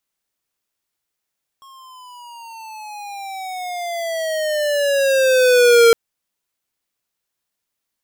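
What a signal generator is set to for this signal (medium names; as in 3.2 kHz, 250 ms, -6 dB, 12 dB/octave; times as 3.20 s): gliding synth tone square, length 4.31 s, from 1.09 kHz, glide -15 st, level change +34 dB, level -9 dB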